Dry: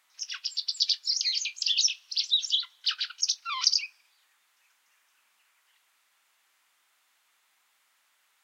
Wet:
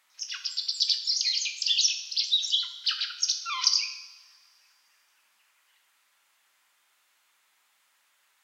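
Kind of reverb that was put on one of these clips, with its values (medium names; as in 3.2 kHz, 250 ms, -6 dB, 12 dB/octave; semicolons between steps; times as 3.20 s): two-slope reverb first 0.82 s, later 2.6 s, from -20 dB, DRR 5.5 dB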